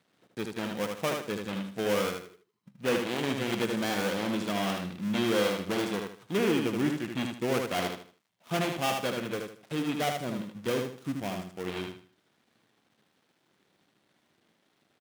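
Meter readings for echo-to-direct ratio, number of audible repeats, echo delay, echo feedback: -4.0 dB, 3, 77 ms, 31%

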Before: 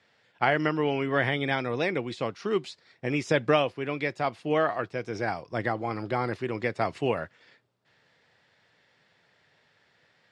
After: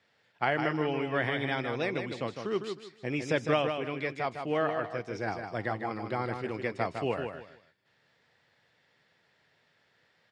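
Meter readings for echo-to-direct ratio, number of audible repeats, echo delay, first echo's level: -6.0 dB, 3, 0.156 s, -6.5 dB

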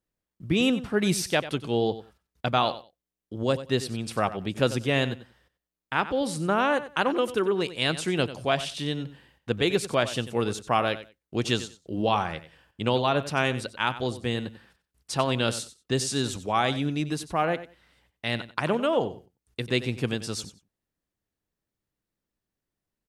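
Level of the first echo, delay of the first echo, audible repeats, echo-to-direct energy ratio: -14.0 dB, 93 ms, 2, -14.0 dB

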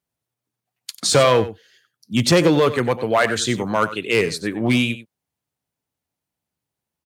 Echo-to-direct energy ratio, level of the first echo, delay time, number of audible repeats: -14.0 dB, -14.0 dB, 93 ms, 1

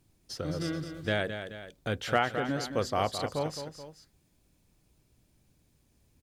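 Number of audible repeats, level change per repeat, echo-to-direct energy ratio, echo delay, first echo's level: 2, -6.0 dB, -8.0 dB, 0.215 s, -9.0 dB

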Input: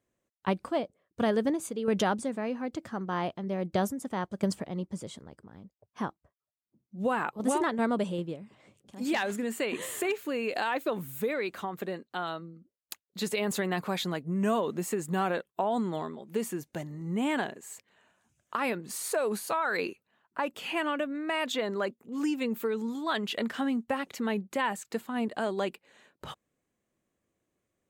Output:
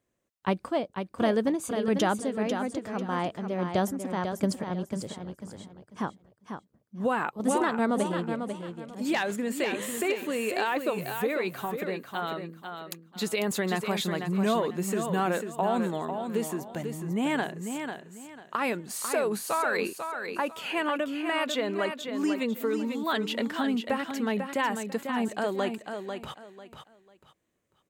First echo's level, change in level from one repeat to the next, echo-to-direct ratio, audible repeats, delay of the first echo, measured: -7.0 dB, -11.5 dB, -6.5 dB, 3, 0.495 s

